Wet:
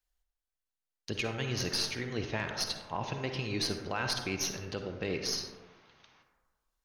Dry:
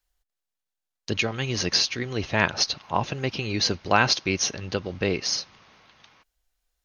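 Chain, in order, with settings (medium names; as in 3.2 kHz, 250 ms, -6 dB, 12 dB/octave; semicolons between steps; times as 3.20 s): tracing distortion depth 0.025 ms; peak limiter -14.5 dBFS, peak gain reduction 11 dB; on a send: reverberation RT60 1.3 s, pre-delay 43 ms, DRR 5 dB; on the sum: trim -7.5 dB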